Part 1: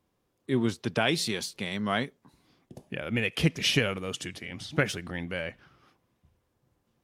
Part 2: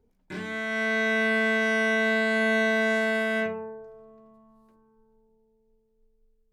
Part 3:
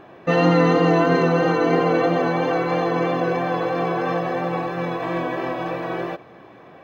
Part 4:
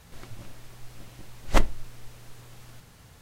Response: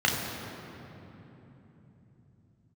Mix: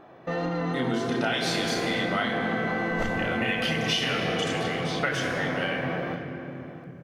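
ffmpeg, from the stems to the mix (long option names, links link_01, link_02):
-filter_complex "[0:a]highpass=frequency=640:poles=1,adelay=250,volume=0dB,asplit=2[link_01][link_02];[link_02]volume=-5.5dB[link_03];[1:a]adelay=1050,volume=-18dB,asplit=2[link_04][link_05];[link_05]volume=-7.5dB[link_06];[2:a]acompressor=threshold=-22dB:ratio=2,asoftclip=type=tanh:threshold=-17.5dB,volume=-6.5dB,asplit=2[link_07][link_08];[link_08]volume=-19dB[link_09];[3:a]adelay=1450,volume=-14dB,asplit=2[link_10][link_11];[link_11]volume=-3.5dB[link_12];[4:a]atrim=start_sample=2205[link_13];[link_03][link_06][link_09][link_12]amix=inputs=4:normalize=0[link_14];[link_14][link_13]afir=irnorm=-1:irlink=0[link_15];[link_01][link_04][link_07][link_10][link_15]amix=inputs=5:normalize=0,acompressor=threshold=-23dB:ratio=6"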